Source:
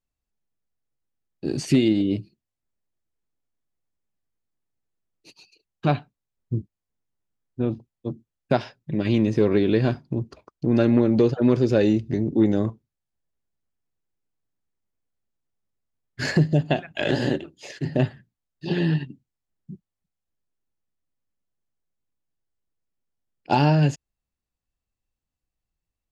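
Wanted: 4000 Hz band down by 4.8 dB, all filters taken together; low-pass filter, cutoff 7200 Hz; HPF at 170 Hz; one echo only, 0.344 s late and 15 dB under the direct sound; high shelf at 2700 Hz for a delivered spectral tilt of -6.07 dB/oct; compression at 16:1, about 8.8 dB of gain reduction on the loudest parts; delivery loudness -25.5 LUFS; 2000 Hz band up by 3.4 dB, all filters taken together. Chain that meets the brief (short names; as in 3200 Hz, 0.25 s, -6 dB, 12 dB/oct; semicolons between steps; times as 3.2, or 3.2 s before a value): HPF 170 Hz; LPF 7200 Hz; bell 2000 Hz +8.5 dB; high shelf 2700 Hz -7.5 dB; bell 4000 Hz -4 dB; compressor 16:1, threshold -23 dBFS; echo 0.344 s -15 dB; gain +5 dB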